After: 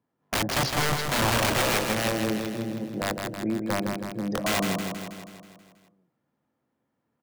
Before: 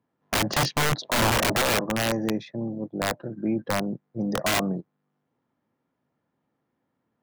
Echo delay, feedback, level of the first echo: 161 ms, 58%, -5.0 dB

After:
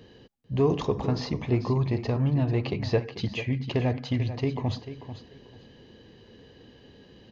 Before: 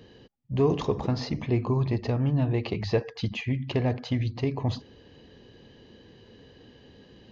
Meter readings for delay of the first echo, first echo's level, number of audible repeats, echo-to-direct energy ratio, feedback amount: 442 ms, -12.0 dB, 2, -12.0 dB, 20%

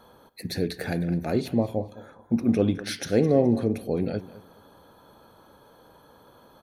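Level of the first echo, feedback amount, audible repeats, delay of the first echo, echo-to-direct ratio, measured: -17.5 dB, 28%, 2, 210 ms, -17.0 dB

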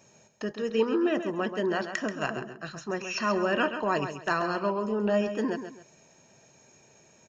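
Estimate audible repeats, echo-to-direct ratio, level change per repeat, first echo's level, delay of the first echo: 2, -8.5 dB, -10.5 dB, -9.0 dB, 133 ms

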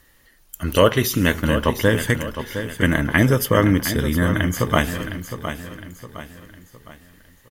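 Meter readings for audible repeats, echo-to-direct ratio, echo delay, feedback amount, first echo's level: 4, -9.0 dB, 711 ms, 41%, -10.0 dB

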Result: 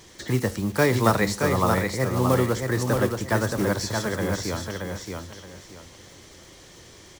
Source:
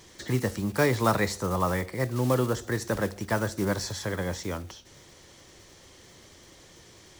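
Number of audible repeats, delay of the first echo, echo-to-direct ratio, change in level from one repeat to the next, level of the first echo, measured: 3, 624 ms, -4.0 dB, -12.0 dB, -4.5 dB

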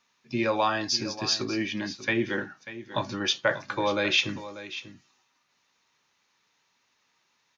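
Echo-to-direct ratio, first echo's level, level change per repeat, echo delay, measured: -14.0 dB, -14.0 dB, no regular repeats, 591 ms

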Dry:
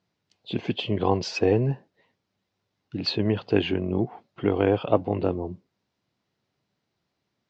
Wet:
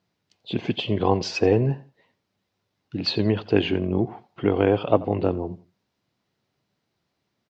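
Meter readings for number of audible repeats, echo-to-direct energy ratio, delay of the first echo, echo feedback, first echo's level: 2, -19.0 dB, 87 ms, 24%, -19.5 dB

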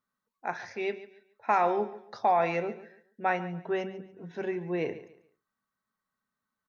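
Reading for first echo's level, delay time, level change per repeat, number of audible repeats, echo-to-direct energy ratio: -15.5 dB, 142 ms, -11.0 dB, 2, -15.0 dB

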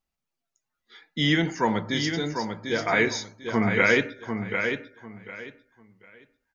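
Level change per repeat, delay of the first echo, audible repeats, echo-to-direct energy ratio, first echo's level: -13.0 dB, 746 ms, 3, -6.5 dB, -6.5 dB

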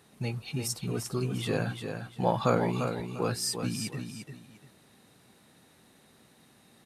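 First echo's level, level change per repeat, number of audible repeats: -7.0 dB, -11.5 dB, 2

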